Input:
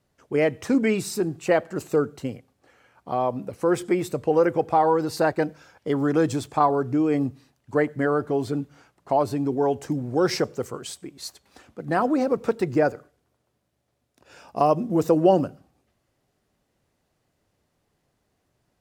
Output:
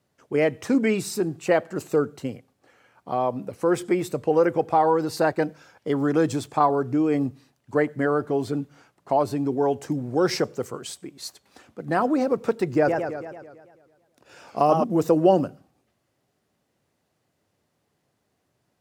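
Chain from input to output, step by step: high-pass 95 Hz; 12.76–14.84 s: modulated delay 110 ms, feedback 61%, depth 182 cents, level -5 dB

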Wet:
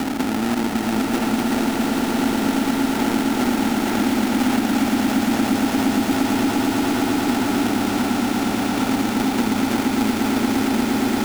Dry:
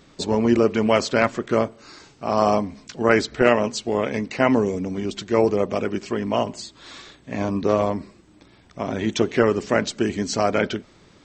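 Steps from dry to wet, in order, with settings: spectral levelling over time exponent 0.2; cascade formant filter i; sample-rate reducer 1.1 kHz, jitter 20%; on a send: echo with a slow build-up 116 ms, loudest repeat 8, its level -8 dB; on the sum: three bands compressed up and down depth 70%; trim -4 dB

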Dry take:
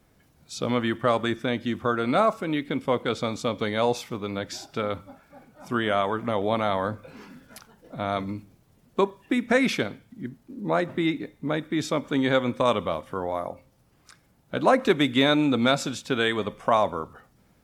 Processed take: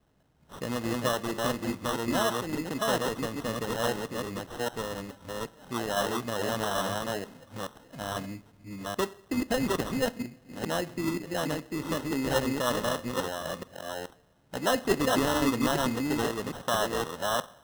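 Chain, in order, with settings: chunks repeated in reverse 426 ms, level -1 dB; two-slope reverb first 0.59 s, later 2.7 s, from -19 dB, DRR 15.5 dB; sample-and-hold 19×; trim -7 dB

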